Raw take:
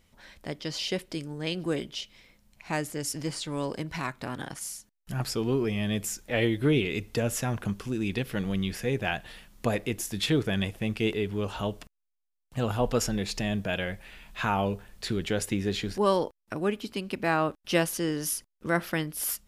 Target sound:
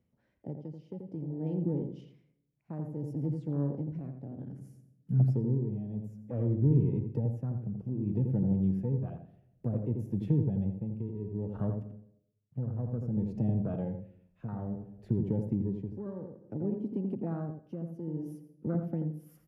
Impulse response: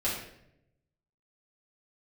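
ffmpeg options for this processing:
-filter_complex "[0:a]asoftclip=type=tanh:threshold=-16dB,equalizer=f=125:t=o:w=1:g=11,equalizer=f=250:t=o:w=1:g=6,equalizer=f=500:t=o:w=1:g=5,equalizer=f=1k:t=o:w=1:g=-4,equalizer=f=2k:t=o:w=1:g=-3,equalizer=f=4k:t=o:w=1:g=-12,equalizer=f=8k:t=o:w=1:g=-10,afwtdn=0.0316,acrossover=split=210[a][b];[b]acompressor=threshold=-30dB:ratio=5[c];[a][c]amix=inputs=2:normalize=0,asplit=2[d][e];[e]adelay=84,lowpass=f=1.5k:p=1,volume=-5dB,asplit=2[f][g];[g]adelay=84,lowpass=f=1.5k:p=1,volume=0.17,asplit=2[h][i];[i]adelay=84,lowpass=f=1.5k:p=1,volume=0.17[j];[d][f][h][j]amix=inputs=4:normalize=0,areverse,acompressor=mode=upward:threshold=-42dB:ratio=2.5,areverse,highshelf=f=11k:g=-8,asplit=2[k][l];[1:a]atrim=start_sample=2205,highshelf=f=9k:g=7.5,adelay=107[m];[l][m]afir=irnorm=-1:irlink=0,volume=-25dB[n];[k][n]amix=inputs=2:normalize=0,tremolo=f=0.59:d=0.64,highpass=62,volume=-5dB"

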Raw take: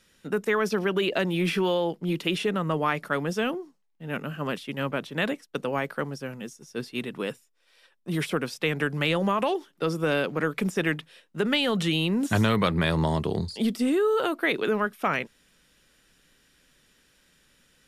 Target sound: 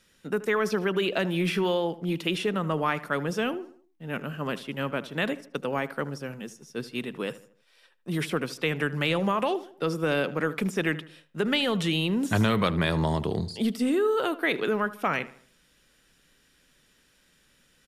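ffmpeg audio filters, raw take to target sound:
-filter_complex "[0:a]asplit=2[a][b];[b]adelay=77,lowpass=f=2.5k:p=1,volume=-16dB,asplit=2[c][d];[d]adelay=77,lowpass=f=2.5k:p=1,volume=0.44,asplit=2[e][f];[f]adelay=77,lowpass=f=2.5k:p=1,volume=0.44,asplit=2[g][h];[h]adelay=77,lowpass=f=2.5k:p=1,volume=0.44[i];[a][c][e][g][i]amix=inputs=5:normalize=0,volume=-1dB"

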